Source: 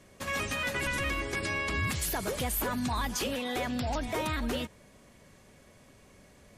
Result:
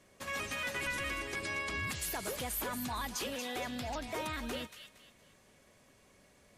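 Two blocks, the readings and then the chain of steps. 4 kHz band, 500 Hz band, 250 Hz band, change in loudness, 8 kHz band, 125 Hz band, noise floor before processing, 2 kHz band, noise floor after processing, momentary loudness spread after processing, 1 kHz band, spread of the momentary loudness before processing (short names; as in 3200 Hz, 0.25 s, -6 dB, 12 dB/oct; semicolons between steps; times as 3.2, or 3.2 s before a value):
-4.0 dB, -6.0 dB, -8.0 dB, -5.5 dB, -4.0 dB, -10.0 dB, -58 dBFS, -4.5 dB, -65 dBFS, 5 LU, -5.5 dB, 3 LU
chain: low shelf 250 Hz -6 dB; thin delay 0.232 s, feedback 34%, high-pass 1900 Hz, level -7 dB; gain -5 dB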